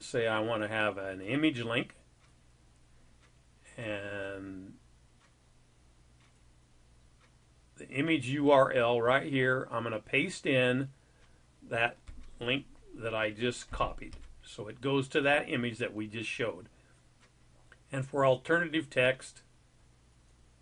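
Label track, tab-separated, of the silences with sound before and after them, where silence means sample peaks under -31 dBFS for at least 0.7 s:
1.830000	3.790000	silence
4.300000	7.950000	silence
10.840000	11.730000	silence
16.500000	17.940000	silence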